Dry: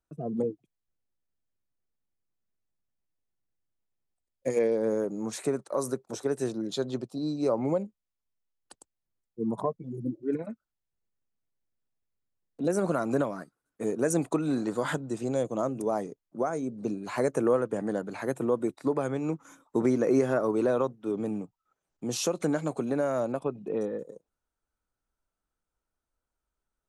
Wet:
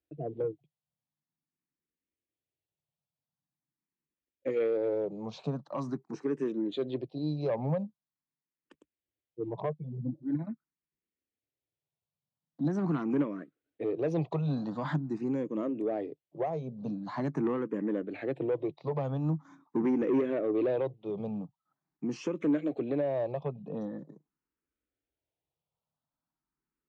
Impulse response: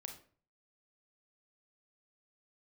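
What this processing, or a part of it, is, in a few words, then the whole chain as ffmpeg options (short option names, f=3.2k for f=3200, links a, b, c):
barber-pole phaser into a guitar amplifier: -filter_complex "[0:a]asplit=2[a][b];[b]afreqshift=0.44[c];[a][c]amix=inputs=2:normalize=1,asoftclip=type=tanh:threshold=-24dB,highpass=80,equalizer=f=150:t=q:w=4:g=9,equalizer=f=300:t=q:w=4:g=5,equalizer=f=1.4k:t=q:w=4:g=-8,lowpass=f=4k:w=0.5412,lowpass=f=4k:w=1.3066"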